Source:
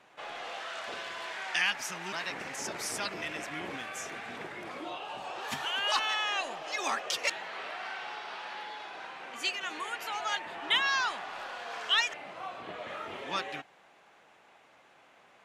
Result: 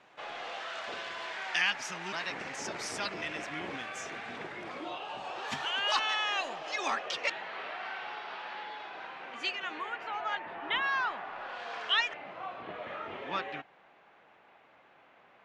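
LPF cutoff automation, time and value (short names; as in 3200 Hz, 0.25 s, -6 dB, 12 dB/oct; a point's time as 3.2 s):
6.72 s 6300 Hz
7.14 s 3700 Hz
9.53 s 3700 Hz
10.04 s 2100 Hz
11.4 s 2100 Hz
11.64 s 5300 Hz
12.17 s 2900 Hz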